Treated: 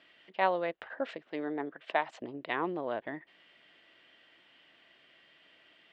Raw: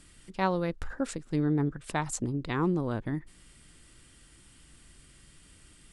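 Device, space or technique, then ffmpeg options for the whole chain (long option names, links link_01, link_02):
phone earpiece: -filter_complex "[0:a]highpass=470,equalizer=frequency=650:width_type=q:width=4:gain=9,equalizer=frequency=1300:width_type=q:width=4:gain=-4,equalizer=frequency=1900:width_type=q:width=4:gain=4,equalizer=frequency=3000:width_type=q:width=4:gain=5,lowpass=frequency=3400:width=0.5412,lowpass=frequency=3400:width=1.3066,asettb=1/sr,asplit=3[link_01][link_02][link_03];[link_01]atrim=end=1.314[link_04];[link_02]atrim=start=1.31:end=2.22,asetpts=PTS-STARTPTS,afade=type=in:duration=0.004:curve=qsin,afade=type=out:start_time=0.906:duration=0.004:curve=qsin,highpass=210[link_05];[link_03]atrim=start=2.216[link_06];[link_04][link_05]acrossfade=duration=0.004:curve1=hsin:curve2=qsin[link_07];[link_07][link_06]acrossfade=duration=0.004:curve1=qsin:curve2=hsin"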